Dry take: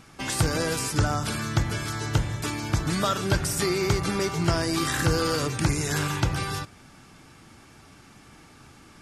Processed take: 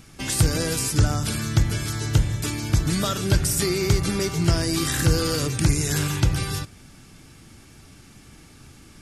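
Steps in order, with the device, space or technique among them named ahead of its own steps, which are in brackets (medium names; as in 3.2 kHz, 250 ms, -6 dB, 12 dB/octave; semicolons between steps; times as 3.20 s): smiley-face EQ (bass shelf 80 Hz +7.5 dB; peaking EQ 1 kHz -7 dB 1.7 oct; treble shelf 9.3 kHz +6.5 dB); trim +2.5 dB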